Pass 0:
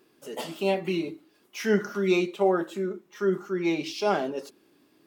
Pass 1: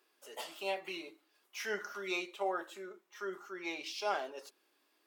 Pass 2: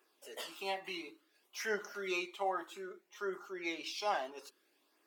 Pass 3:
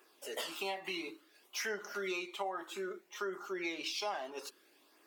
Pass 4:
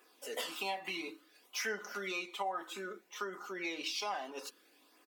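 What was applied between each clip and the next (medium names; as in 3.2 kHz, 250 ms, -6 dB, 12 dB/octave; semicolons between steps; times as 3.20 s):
high-pass 690 Hz 12 dB/octave; trim -6 dB
flange 0.6 Hz, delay 0.1 ms, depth 1 ms, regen -35%; trim +4 dB
compression 6:1, threshold -43 dBFS, peak gain reduction 13.5 dB; trim +7.5 dB
comb 4 ms, depth 45%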